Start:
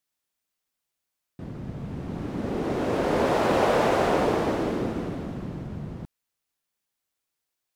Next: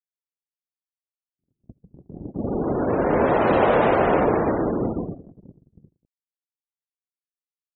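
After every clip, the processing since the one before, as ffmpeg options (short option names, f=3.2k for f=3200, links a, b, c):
-af "afftfilt=real='re*gte(hypot(re,im),0.0316)':imag='im*gte(hypot(re,im),0.0316)':win_size=1024:overlap=0.75,agate=range=-51dB:threshold=-30dB:ratio=16:detection=peak,volume=4dB"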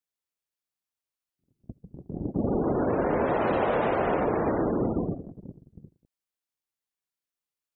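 -af "acompressor=threshold=-26dB:ratio=6,volume=3.5dB"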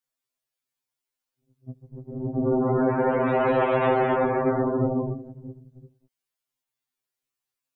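-af "afftfilt=real='re*2.45*eq(mod(b,6),0)':imag='im*2.45*eq(mod(b,6),0)':win_size=2048:overlap=0.75,volume=5.5dB"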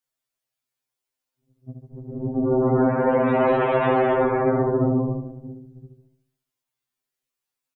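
-filter_complex "[0:a]asplit=2[a][b];[b]adelay=73,lowpass=f=1.4k:p=1,volume=-4.5dB,asplit=2[c][d];[d]adelay=73,lowpass=f=1.4k:p=1,volume=0.52,asplit=2[e][f];[f]adelay=73,lowpass=f=1.4k:p=1,volume=0.52,asplit=2[g][h];[h]adelay=73,lowpass=f=1.4k:p=1,volume=0.52,asplit=2[i][j];[j]adelay=73,lowpass=f=1.4k:p=1,volume=0.52,asplit=2[k][l];[l]adelay=73,lowpass=f=1.4k:p=1,volume=0.52,asplit=2[m][n];[n]adelay=73,lowpass=f=1.4k:p=1,volume=0.52[o];[a][c][e][g][i][k][m][o]amix=inputs=8:normalize=0,volume=1dB"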